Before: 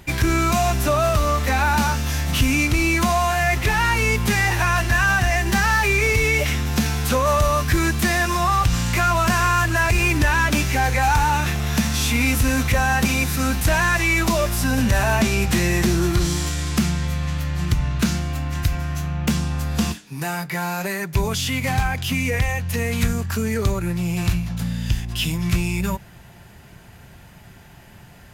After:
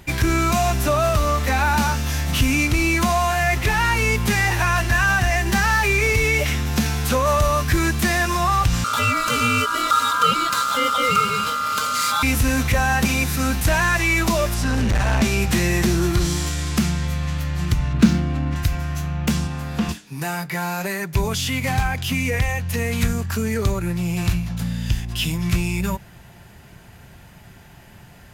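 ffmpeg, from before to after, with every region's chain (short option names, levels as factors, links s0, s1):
-filter_complex "[0:a]asettb=1/sr,asplit=3[s0][s1][s2];[s0]atrim=end=8.844[s3];[s1]atrim=start=8.84:end=12.23,asetpts=PTS-STARTPTS,afade=t=in:d=0.004:c=qsin,afade=t=out:st=3.386:d=0.004:c=qsin,equalizer=f=510:w=1.4:g=-13,aecho=1:1:2.7:0.97,atrim=end_sample=149499,aeval=exprs='val(0)*sin(2*PI*1300*n/s)':c=same[s4];[s2]atrim=start=12.226[s5];[s3][s4]acrossfade=d=0.004:c1=hsin:c2=qsin[s6];[s6][s5]acrossfade=d=0.004:c1=qsin:c2=hsin,asettb=1/sr,asplit=3[s7][s8][s9];[s7]atrim=end=14.544[s10];[s8]atrim=start=14.54:end=15.22,asetpts=PTS-STARTPTS,afade=t=in:d=0.004:c=qsin,afade=t=out:st=0.676:d=0.004:c=qsin,asubboost=boost=10:cutoff=160,lowpass=7900,volume=6.31,asoftclip=hard,volume=0.158[s11];[s9]atrim=start=15.216[s12];[s10][s11]acrossfade=d=0.004:c1=hsin:c2=qsin[s13];[s13][s12]acrossfade=d=0.004:c1=qsin:c2=hsin,asettb=1/sr,asplit=3[s14][s15][s16];[s14]atrim=end=17.934[s17];[s15]atrim=start=17.93:end=18.56,asetpts=PTS-STARTPTS,afade=t=in:d=0.004:c=qsin,afade=t=out:st=0.626:d=0.004:c=qsin,equalizer=f=250:w=1:g=9,adynamicsmooth=sensitivity=5.5:basefreq=2200[s18];[s16]atrim=start=18.556[s19];[s17][s18]acrossfade=d=0.004:c1=hsin:c2=qsin[s20];[s20][s19]acrossfade=d=0.004:c1=qsin:c2=hsin,asettb=1/sr,asplit=3[s21][s22][s23];[s21]atrim=end=19.474[s24];[s22]atrim=start=19.47:end=19.89,asetpts=PTS-STARTPTS,afade=t=in:d=0.004:c=qsin,afade=t=out:st=0.416:d=0.004:c=qsin,highpass=110,acrossover=split=3300[s25][s26];[s26]acompressor=threshold=0.00631:ratio=4:attack=1:release=60[s27];[s25][s27]amix=inputs=2:normalize=0[s28];[s23]atrim=start=19.886[s29];[s24][s28]acrossfade=d=0.004:c1=hsin:c2=qsin[s30];[s30][s29]acrossfade=d=0.004:c1=qsin:c2=hsin"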